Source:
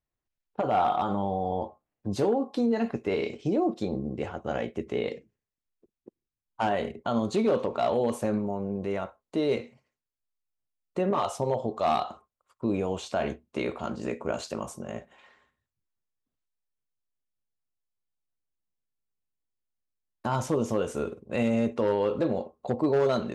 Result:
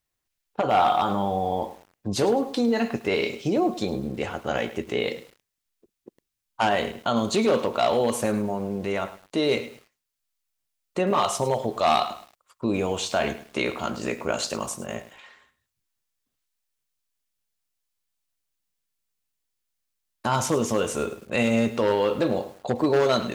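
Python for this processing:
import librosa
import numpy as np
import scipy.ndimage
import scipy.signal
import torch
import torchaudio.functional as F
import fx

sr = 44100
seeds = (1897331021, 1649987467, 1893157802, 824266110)

y = fx.tilt_shelf(x, sr, db=-5.0, hz=1400.0)
y = fx.echo_crushed(y, sr, ms=105, feedback_pct=35, bits=8, wet_db=-14.0)
y = y * 10.0 ** (7.0 / 20.0)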